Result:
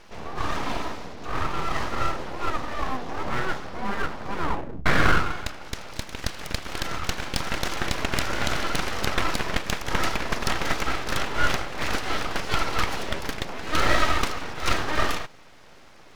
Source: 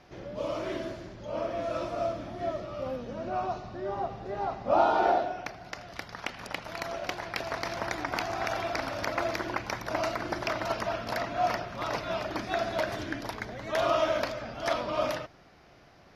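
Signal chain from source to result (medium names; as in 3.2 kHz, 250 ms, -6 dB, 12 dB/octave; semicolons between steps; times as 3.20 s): 2.51–3.41 s: comb 3.4 ms, depth 40%; 4.33 s: tape stop 0.53 s; full-wave rectifier; trim +8.5 dB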